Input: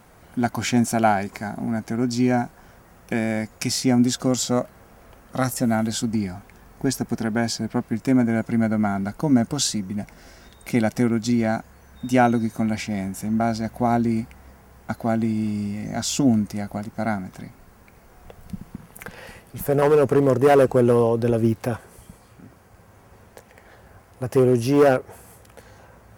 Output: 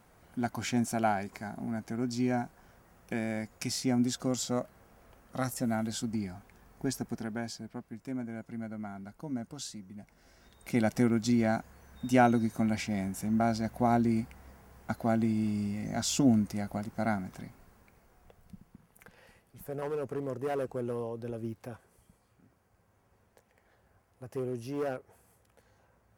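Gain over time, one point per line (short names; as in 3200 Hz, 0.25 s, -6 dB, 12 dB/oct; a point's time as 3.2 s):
7.01 s -10 dB
7.85 s -18.5 dB
10.02 s -18.5 dB
10.89 s -6 dB
17.34 s -6 dB
18.69 s -18 dB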